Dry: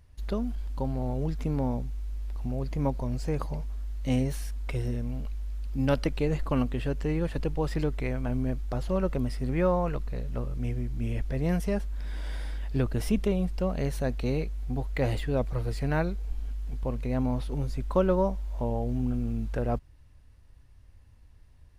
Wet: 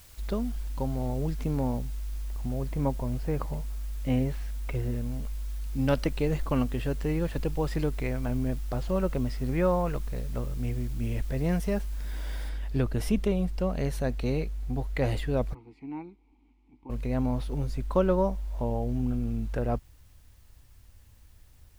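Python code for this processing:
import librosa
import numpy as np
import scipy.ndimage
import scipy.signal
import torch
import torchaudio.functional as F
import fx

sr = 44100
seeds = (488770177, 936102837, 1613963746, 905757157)

y = fx.lowpass(x, sr, hz=2700.0, slope=12, at=(2.23, 5.36))
y = fx.lowpass(y, sr, hz=7700.0, slope=12, at=(8.33, 10.83))
y = fx.noise_floor_step(y, sr, seeds[0], at_s=12.49, before_db=-55, after_db=-67, tilt_db=0.0)
y = fx.vowel_filter(y, sr, vowel='u', at=(15.53, 16.89), fade=0.02)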